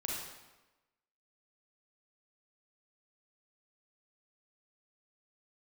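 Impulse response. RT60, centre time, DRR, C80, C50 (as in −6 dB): 1.1 s, 75 ms, −3.5 dB, 2.5 dB, −1.0 dB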